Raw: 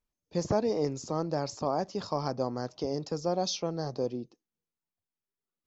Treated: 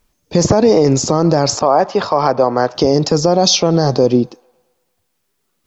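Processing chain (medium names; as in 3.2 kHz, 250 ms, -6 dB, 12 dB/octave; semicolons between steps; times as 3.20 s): 1.59–2.75 s: three-band isolator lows -12 dB, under 410 Hz, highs -16 dB, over 3.4 kHz; feedback echo behind a band-pass 110 ms, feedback 56%, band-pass 1.5 kHz, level -24 dB; loudness maximiser +25 dB; trim -1 dB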